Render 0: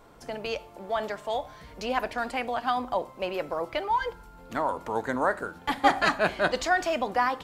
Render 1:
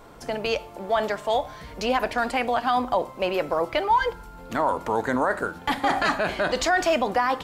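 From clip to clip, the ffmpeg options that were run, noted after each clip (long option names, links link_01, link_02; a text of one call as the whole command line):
ffmpeg -i in.wav -af "alimiter=limit=-19dB:level=0:latency=1:release=28,volume=6.5dB" out.wav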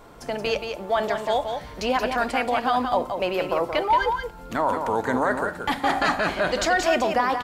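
ffmpeg -i in.wav -af "aecho=1:1:177:0.473" out.wav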